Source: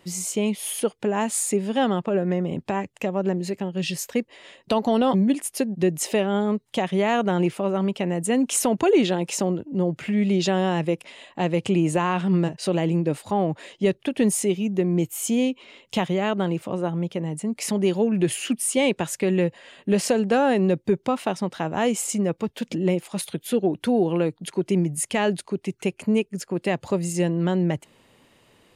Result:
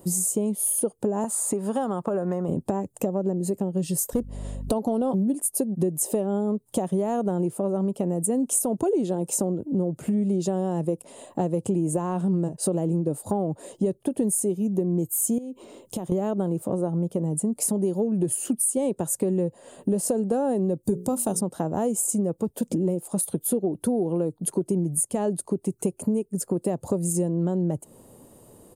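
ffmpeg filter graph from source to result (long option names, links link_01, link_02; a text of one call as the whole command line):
ffmpeg -i in.wav -filter_complex "[0:a]asettb=1/sr,asplit=3[link_01][link_02][link_03];[link_01]atrim=end=1.244[link_04];[link_02]atrim=start=1.24:end=2.49,asetpts=PTS-STARTPTS,afade=type=in:duration=0.004:curve=qsin,afade=type=out:start_time=1.246:duration=0.004:curve=qsin,equalizer=frequency=1200:width_type=o:width=1.3:gain=9.5,acrossover=split=810|5200[link_05][link_06][link_07];[link_05]acompressor=threshold=-29dB:ratio=4[link_08];[link_06]acompressor=threshold=-28dB:ratio=4[link_09];[link_07]acompressor=threshold=-38dB:ratio=4[link_10];[link_08][link_09][link_10]amix=inputs=3:normalize=0[link_11];[link_03]atrim=start=2.486[link_12];[link_04][link_11]acrossfade=duration=0.004:curve1=hsin:curve2=qsin[link_13];[link_13][link_12]acrossfade=duration=0.004:curve1=qsin:curve2=hsin,asettb=1/sr,asplit=3[link_14][link_15][link_16];[link_14]atrim=end=4.134[link_17];[link_15]atrim=start=4.13:end=4.72,asetpts=PTS-STARTPTS,afade=type=in:duration=0.004:curve=qsin,afade=type=out:start_time=0.586:duration=0.004:curve=qsin,aeval=exprs='val(0)+0.01*(sin(2*PI*50*n/s)+sin(2*PI*2*50*n/s)/2+sin(2*PI*3*50*n/s)/3+sin(2*PI*4*50*n/s)/4+sin(2*PI*5*50*n/s)/5)':channel_layout=same,aeval=exprs='clip(val(0),-1,0.126)':channel_layout=same[link_18];[link_16]atrim=start=4.716[link_19];[link_17][link_18]acrossfade=duration=0.004:curve1=hsin:curve2=qsin[link_20];[link_20][link_19]acrossfade=duration=0.004:curve1=qsin:curve2=hsin,asettb=1/sr,asplit=3[link_21][link_22][link_23];[link_21]atrim=end=15.384[link_24];[link_22]atrim=start=15.38:end=16.12,asetpts=PTS-STARTPTS,afade=type=in:duration=0.004:curve=qsin,afade=type=out:start_time=0.736:duration=0.004:curve=qsin,equalizer=frequency=340:width_type=o:width=0.27:gain=5.5,acompressor=threshold=-32dB:ratio=20:attack=3.2:release=140:knee=1:detection=peak[link_25];[link_23]atrim=start=16.116[link_26];[link_24][link_25]acrossfade=duration=0.004:curve1=hsin:curve2=qsin[link_27];[link_27][link_26]acrossfade=duration=0.004:curve1=qsin:curve2=hsin,asettb=1/sr,asplit=3[link_28][link_29][link_30];[link_28]atrim=end=20.834[link_31];[link_29]atrim=start=20.83:end=21.41,asetpts=PTS-STARTPTS,afade=type=in:duration=0.004:curve=qsin,afade=type=out:start_time=0.576:duration=0.004:curve=qsin,bass=frequency=250:gain=6,treble=frequency=4000:gain=14,bandreject=frequency=60:width_type=h:width=6,bandreject=frequency=120:width_type=h:width=6,bandreject=frequency=180:width_type=h:width=6,bandreject=frequency=240:width_type=h:width=6,bandreject=frequency=300:width_type=h:width=6,bandreject=frequency=360:width_type=h:width=6,bandreject=frequency=420:width_type=h:width=6,bandreject=frequency=480:width_type=h:width=6,bandreject=frequency=540:width_type=h:width=6[link_32];[link_30]atrim=start=21.406[link_33];[link_31][link_32]acrossfade=duration=0.004:curve1=hsin:curve2=qsin[link_34];[link_34][link_33]acrossfade=duration=0.004:curve1=qsin:curve2=hsin,firequalizer=gain_entry='entry(520,0);entry(2100,-23);entry(8900,6)':delay=0.05:min_phase=1,acompressor=threshold=-31dB:ratio=5,bandreject=frequency=5600:width=27,volume=8.5dB" out.wav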